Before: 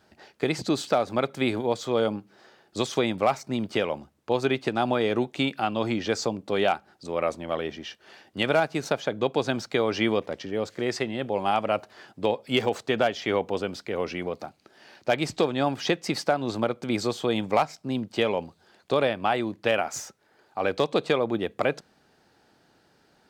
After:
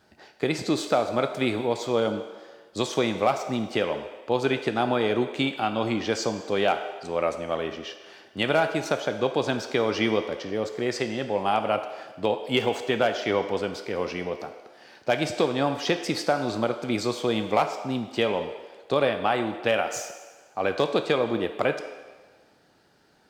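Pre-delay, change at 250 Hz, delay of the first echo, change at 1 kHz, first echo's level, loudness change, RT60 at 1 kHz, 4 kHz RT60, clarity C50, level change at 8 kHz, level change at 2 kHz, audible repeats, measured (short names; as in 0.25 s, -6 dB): 7 ms, 0.0 dB, none, +0.5 dB, none, +0.5 dB, 1.4 s, 1.3 s, 9.0 dB, +1.0 dB, +1.0 dB, none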